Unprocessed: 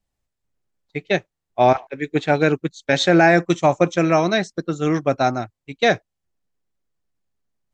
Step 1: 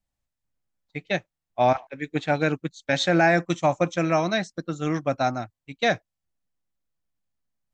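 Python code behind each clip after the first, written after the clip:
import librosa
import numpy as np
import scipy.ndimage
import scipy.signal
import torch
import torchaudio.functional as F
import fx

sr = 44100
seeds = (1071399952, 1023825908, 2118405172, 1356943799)

y = fx.peak_eq(x, sr, hz=400.0, db=-9.5, octaves=0.31)
y = F.gain(torch.from_numpy(y), -4.5).numpy()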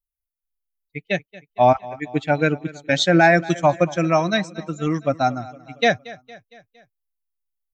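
y = fx.bin_expand(x, sr, power=1.5)
y = fx.echo_feedback(y, sr, ms=230, feedback_pct=54, wet_db=-19.5)
y = F.gain(torch.from_numpy(y), 6.5).numpy()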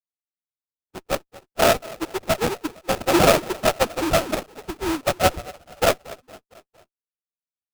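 y = fx.sine_speech(x, sr)
y = fx.sample_hold(y, sr, seeds[0], rate_hz=1300.0, jitter_pct=20)
y = fx.running_max(y, sr, window=9)
y = F.gain(torch.from_numpy(y), -2.5).numpy()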